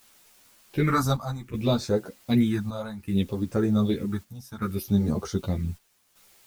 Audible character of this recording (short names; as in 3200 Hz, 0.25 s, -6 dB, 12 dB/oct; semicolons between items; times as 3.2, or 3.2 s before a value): phasing stages 4, 0.63 Hz, lowest notch 340–3200 Hz; a quantiser's noise floor 10-bit, dither triangular; chopped level 0.65 Hz, depth 65%, duty 75%; a shimmering, thickened sound